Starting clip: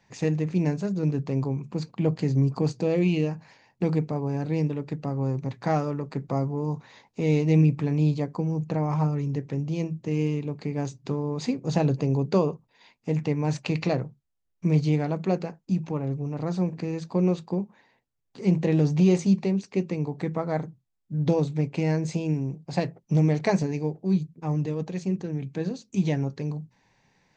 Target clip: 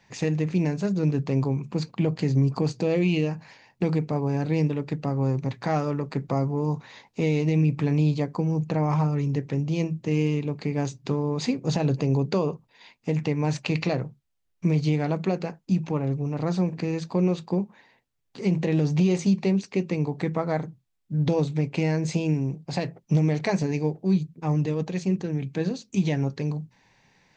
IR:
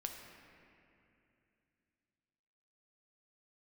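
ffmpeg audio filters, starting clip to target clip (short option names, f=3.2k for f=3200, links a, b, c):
-af "equalizer=f=2.9k:t=o:w=2:g=3.5,alimiter=limit=-16dB:level=0:latency=1:release=159,volume=2.5dB"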